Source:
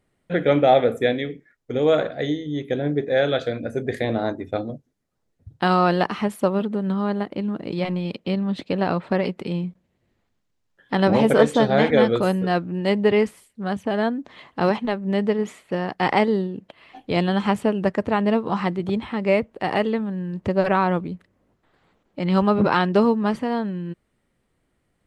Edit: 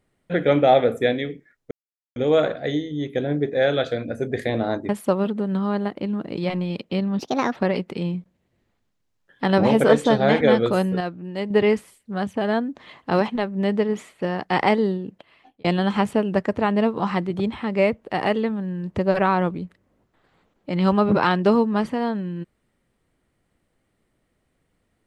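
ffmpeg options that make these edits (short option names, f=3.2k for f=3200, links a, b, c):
-filter_complex "[0:a]asplit=8[a][b][c][d][e][f][g][h];[a]atrim=end=1.71,asetpts=PTS-STARTPTS,afade=t=out:st=1.706:d=0.004:c=hsin,apad=pad_dur=0.45[i];[b]atrim=start=1.71:end=4.442,asetpts=PTS-STARTPTS,afade=t=in:d=0.004:c=hsin[j];[c]atrim=start=6.238:end=8.544[k];[d]atrim=start=8.54:end=9.06,asetpts=PTS-STARTPTS,asetrate=61299,aresample=44100[l];[e]atrim=start=9.056:end=12.502[m];[f]atrim=start=12.498:end=13.002,asetpts=PTS-STARTPTS,volume=-7dB[n];[g]atrim=start=12.998:end=17.14,asetpts=PTS-STARTPTS,afade=t=out:st=3.552:d=0.59[o];[h]atrim=start=17.14,asetpts=PTS-STARTPTS,afade=t=in:d=0.004:c=hsin[p];[i][j]concat=n=2:v=0:a=1[q];[q][k]acrossfade=d=0.004:c1=hsin:c2=hsin[r];[r][l]acrossfade=d=0.004:c1=hsin:c2=hsin[s];[s][m]acrossfade=d=0.004:c1=hsin:c2=hsin[t];[t][n]acrossfade=d=0.004:c1=hsin:c2=hsin[u];[o][p]concat=n=2:v=0:a=1[v];[u][v]acrossfade=d=0.004:c1=hsin:c2=hsin"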